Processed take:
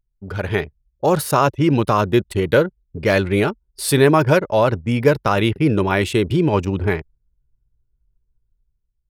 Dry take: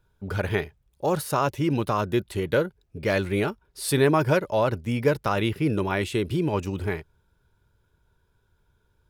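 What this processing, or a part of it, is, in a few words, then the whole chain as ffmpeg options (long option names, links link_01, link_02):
voice memo with heavy noise removal: -af "anlmdn=1,dynaudnorm=framelen=120:gausssize=9:maxgain=9dB"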